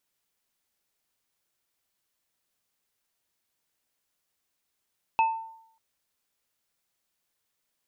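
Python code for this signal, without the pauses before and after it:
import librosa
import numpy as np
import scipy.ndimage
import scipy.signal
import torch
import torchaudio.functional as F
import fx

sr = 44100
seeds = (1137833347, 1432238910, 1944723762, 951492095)

y = fx.additive_free(sr, length_s=0.59, hz=898.0, level_db=-17.0, upper_db=(-8.5,), decay_s=0.7, upper_decays_s=(0.28,), upper_hz=(2600.0,))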